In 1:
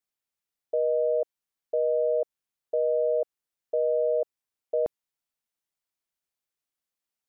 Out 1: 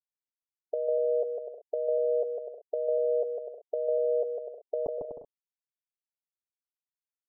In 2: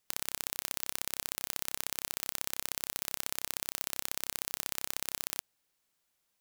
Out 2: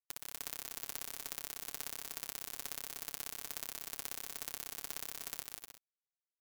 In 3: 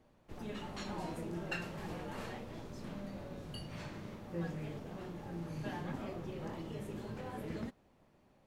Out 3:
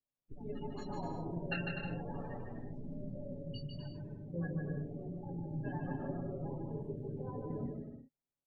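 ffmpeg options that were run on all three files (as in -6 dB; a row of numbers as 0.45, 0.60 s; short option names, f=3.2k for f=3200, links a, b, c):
-filter_complex "[0:a]afftdn=nr=36:nf=-40,aecho=1:1:7.2:0.56,asplit=2[a][b];[b]aecho=0:1:150|247.5|310.9|352.1|378.8:0.631|0.398|0.251|0.158|0.1[c];[a][c]amix=inputs=2:normalize=0"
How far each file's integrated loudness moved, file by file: -3.0, -6.5, +1.5 LU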